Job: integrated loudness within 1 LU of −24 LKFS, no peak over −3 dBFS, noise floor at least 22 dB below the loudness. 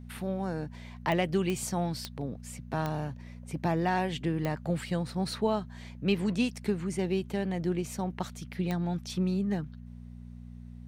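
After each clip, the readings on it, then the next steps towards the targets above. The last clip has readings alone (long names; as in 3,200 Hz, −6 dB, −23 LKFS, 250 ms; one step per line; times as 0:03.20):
number of clicks 6; mains hum 60 Hz; hum harmonics up to 240 Hz; level of the hum −43 dBFS; integrated loudness −32.0 LKFS; sample peak −14.0 dBFS; target loudness −24.0 LKFS
→ click removal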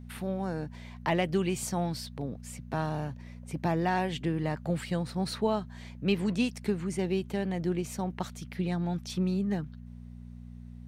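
number of clicks 0; mains hum 60 Hz; hum harmonics up to 240 Hz; level of the hum −43 dBFS
→ hum removal 60 Hz, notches 4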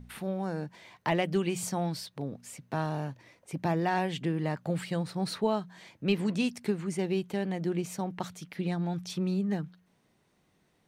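mains hum none found; integrated loudness −32.5 LKFS; sample peak −14.0 dBFS; target loudness −24.0 LKFS
→ level +8.5 dB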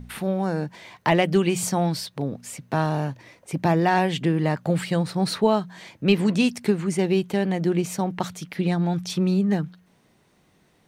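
integrated loudness −24.0 LKFS; sample peak −5.5 dBFS; background noise floor −62 dBFS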